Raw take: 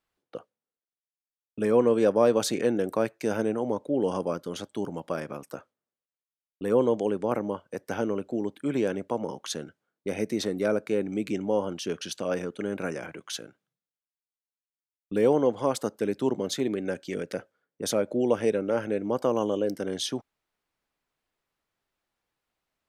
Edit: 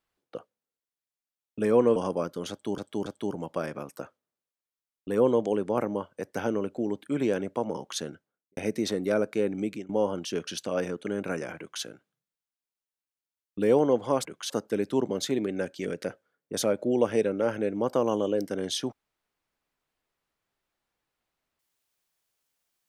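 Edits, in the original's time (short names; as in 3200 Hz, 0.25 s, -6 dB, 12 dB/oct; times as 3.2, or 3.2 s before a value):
1.96–4.06 cut
4.6–4.88 loop, 3 plays
9.63–10.11 studio fade out
11.16–11.43 fade out, to -21.5 dB
13.12–13.37 copy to 15.79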